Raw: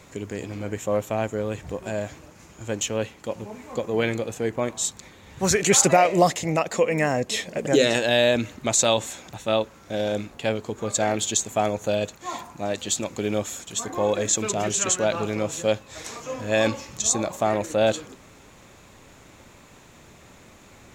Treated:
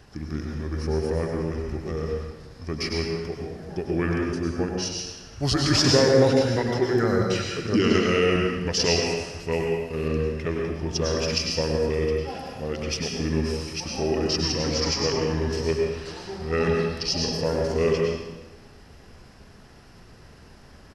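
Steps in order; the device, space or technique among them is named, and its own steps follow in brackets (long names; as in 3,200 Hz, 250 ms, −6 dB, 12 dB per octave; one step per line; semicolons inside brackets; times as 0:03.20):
monster voice (pitch shifter −5 semitones; low-shelf EQ 120 Hz +9 dB; convolution reverb RT60 1.2 s, pre-delay 92 ms, DRR 0 dB)
0:09.52–0:10.08: high-shelf EQ 7,900 Hz +10 dB
level −4.5 dB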